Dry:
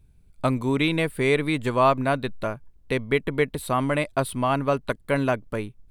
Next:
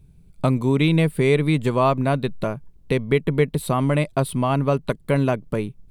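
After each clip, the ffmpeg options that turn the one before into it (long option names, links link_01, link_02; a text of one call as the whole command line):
ffmpeg -i in.wav -filter_complex "[0:a]asplit=2[link_01][link_02];[link_02]acompressor=threshold=-28dB:ratio=6,volume=-0.5dB[link_03];[link_01][link_03]amix=inputs=2:normalize=0,equalizer=frequency=160:width_type=o:width=0.67:gain=10,equalizer=frequency=400:width_type=o:width=0.67:gain=3,equalizer=frequency=1600:width_type=o:width=0.67:gain=-4,volume=-2dB" out.wav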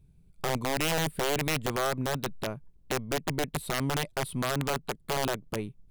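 ffmpeg -i in.wav -af "aeval=exprs='(tanh(3.55*val(0)+0.25)-tanh(0.25))/3.55':channel_layout=same,aeval=exprs='(mod(4.73*val(0)+1,2)-1)/4.73':channel_layout=same,volume=-8dB" out.wav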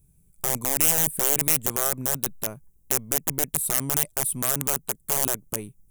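ffmpeg -i in.wav -af "aexciter=amount=6.8:drive=6.5:freq=6100,volume=-2dB" out.wav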